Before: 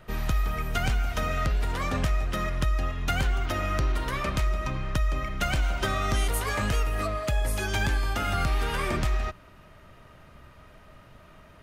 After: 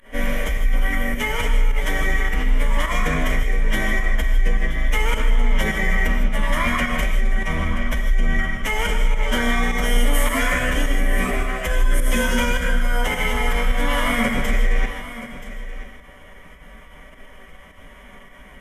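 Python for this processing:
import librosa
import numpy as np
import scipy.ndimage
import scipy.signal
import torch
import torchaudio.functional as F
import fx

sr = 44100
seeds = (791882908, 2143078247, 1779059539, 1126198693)

p1 = fx.tracing_dist(x, sr, depth_ms=0.092)
p2 = fx.peak_eq(p1, sr, hz=3200.0, db=4.0, octaves=2.1)
p3 = fx.hum_notches(p2, sr, base_hz=60, count=4)
p4 = fx.over_compress(p3, sr, threshold_db=-28.0, ratio=-0.5)
p5 = p3 + (p4 * librosa.db_to_amplitude(-2.0))
p6 = fx.stretch_vocoder(p5, sr, factor=1.6)
p7 = fx.fixed_phaser(p6, sr, hz=880.0, stages=8)
p8 = fx.pitch_keep_formants(p7, sr, semitones=-8.5)
p9 = fx.volume_shaper(p8, sr, bpm=105, per_beat=1, depth_db=-19, release_ms=92.0, shape='fast start')
p10 = p9 + fx.echo_single(p9, sr, ms=978, db=-14.0, dry=0)
p11 = fx.rev_gated(p10, sr, seeds[0], gate_ms=180, shape='rising', drr_db=5.0)
y = p11 * librosa.db_to_amplitude(5.5)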